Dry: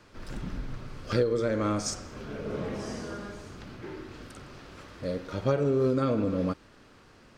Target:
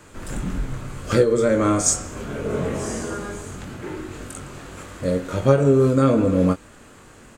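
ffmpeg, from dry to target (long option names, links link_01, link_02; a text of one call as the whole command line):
ffmpeg -i in.wav -filter_complex "[0:a]highshelf=frequency=6200:width_type=q:width=3:gain=6,asplit=2[link_01][link_02];[link_02]adelay=22,volume=-6dB[link_03];[link_01][link_03]amix=inputs=2:normalize=0,volume=8dB" out.wav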